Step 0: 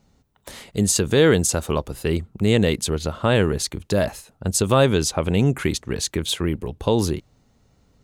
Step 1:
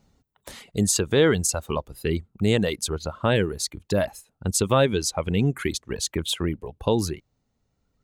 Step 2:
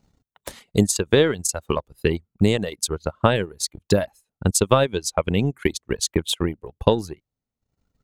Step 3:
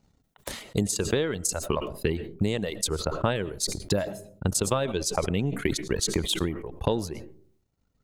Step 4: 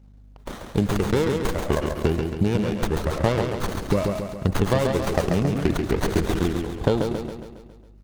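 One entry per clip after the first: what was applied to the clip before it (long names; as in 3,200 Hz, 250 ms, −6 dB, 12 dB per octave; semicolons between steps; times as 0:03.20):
reverb reduction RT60 1.8 s; level −2 dB
transient designer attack +10 dB, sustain −12 dB; level −2 dB
downward compressor, threshold −20 dBFS, peak gain reduction 9.5 dB; on a send at −23 dB: convolution reverb RT60 0.55 s, pre-delay 65 ms; on the sum: level that may fall only so fast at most 78 dB per second; level −2 dB
mains hum 50 Hz, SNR 25 dB; on a send: repeating echo 137 ms, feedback 54%, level −5 dB; on the sum: windowed peak hold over 17 samples; level +4 dB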